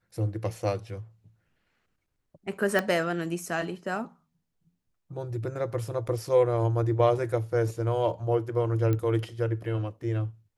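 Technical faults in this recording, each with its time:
0:02.79: click −13 dBFS
0:06.08–0:06.09: drop-out 6.8 ms
0:08.93: click −17 dBFS

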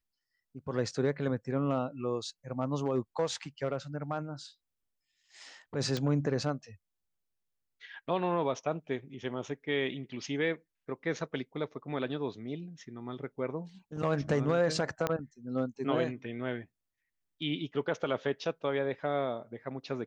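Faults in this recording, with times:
0:05.97: click −19 dBFS
0:15.07: click −15 dBFS

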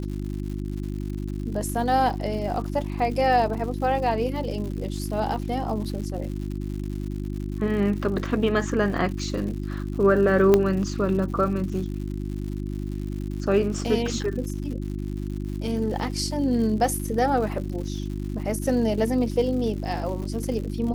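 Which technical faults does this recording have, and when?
surface crackle 160 per second −34 dBFS
mains hum 50 Hz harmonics 7 −30 dBFS
0:10.54: click −6 dBFS

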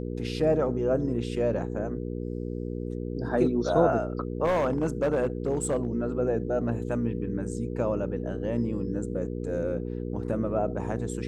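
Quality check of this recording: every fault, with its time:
mains hum 60 Hz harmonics 8 −33 dBFS
0:04.44–0:05.87: clipping −20.5 dBFS

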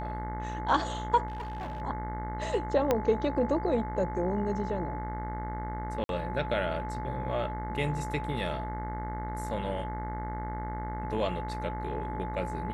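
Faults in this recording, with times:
mains buzz 60 Hz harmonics 36 −37 dBFS
whistle 860 Hz −37 dBFS
0:01.28–0:01.82: clipping −33.5 dBFS
0:02.91: click −12 dBFS
0:06.04–0:06.09: drop-out 52 ms

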